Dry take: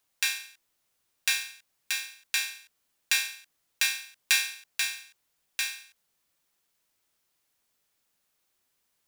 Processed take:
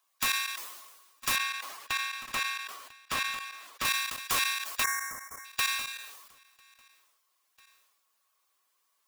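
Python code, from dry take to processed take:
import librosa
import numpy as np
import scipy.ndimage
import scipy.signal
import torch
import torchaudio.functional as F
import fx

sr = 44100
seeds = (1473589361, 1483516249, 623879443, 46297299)

y = fx.spec_quant(x, sr, step_db=15)
y = scipy.signal.sosfilt(scipy.signal.butter(2, 460.0, 'highpass', fs=sr, output='sos'), y)
y = (np.mod(10.0 ** (18.5 / 20.0) * y + 1.0, 2.0) - 1.0) / 10.0 ** (18.5 / 20.0)
y = fx.echo_feedback(y, sr, ms=997, feedback_pct=35, wet_db=-23)
y = fx.spec_box(y, sr, start_s=4.83, length_s=0.62, low_hz=2300.0, high_hz=5300.0, gain_db=-30)
y = fx.small_body(y, sr, hz=(1100.0,), ring_ms=45, db=17)
y = fx.level_steps(y, sr, step_db=16)
y = fx.high_shelf(y, sr, hz=5000.0, db=-10.5, at=(1.36, 3.85))
y = fx.sustainer(y, sr, db_per_s=44.0)
y = y * 10.0 ** (5.0 / 20.0)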